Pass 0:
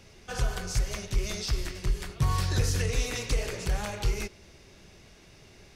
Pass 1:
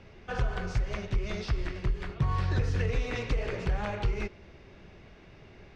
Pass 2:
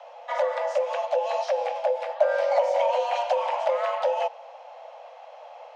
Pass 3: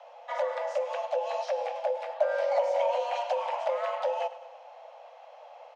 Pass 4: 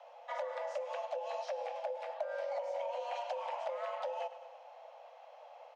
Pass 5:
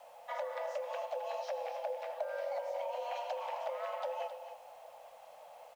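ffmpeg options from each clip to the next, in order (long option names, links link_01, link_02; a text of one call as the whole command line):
ffmpeg -i in.wav -af "lowpass=2400,acompressor=threshold=-26dB:ratio=6,volume=2.5dB" out.wav
ffmpeg -i in.wav -af "equalizer=frequency=250:width_type=o:width=1.8:gain=14,afreqshift=470" out.wav
ffmpeg -i in.wav -af "aecho=1:1:105|210|315|420|525:0.158|0.0856|0.0462|0.025|0.0135,volume=-5dB" out.wav
ffmpeg -i in.wav -af "acompressor=threshold=-30dB:ratio=6,volume=-5dB" out.wav
ffmpeg -i in.wav -filter_complex "[0:a]acrusher=bits=10:mix=0:aa=0.000001,asplit=2[link_01][link_02];[link_02]aecho=0:1:264:0.282[link_03];[link_01][link_03]amix=inputs=2:normalize=0" out.wav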